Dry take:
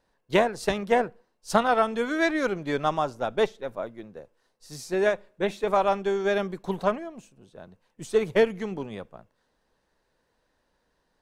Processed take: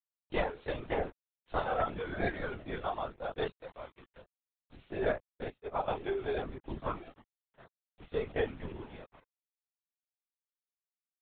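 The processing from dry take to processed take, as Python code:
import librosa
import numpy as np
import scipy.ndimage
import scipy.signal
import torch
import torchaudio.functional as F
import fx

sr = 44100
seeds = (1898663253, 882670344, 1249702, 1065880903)

y = fx.low_shelf(x, sr, hz=320.0, db=-4.5, at=(3.58, 4.15), fade=0.02)
y = np.where(np.abs(y) >= 10.0 ** (-37.5 / 20.0), y, 0.0)
y = fx.chorus_voices(y, sr, voices=2, hz=0.46, base_ms=28, depth_ms=1.1, mix_pct=45)
y = fx.lpc_vocoder(y, sr, seeds[0], excitation='whisper', order=16)
y = fx.upward_expand(y, sr, threshold_db=-34.0, expansion=2.5, at=(5.44, 5.88))
y = y * 10.0 ** (-7.5 / 20.0)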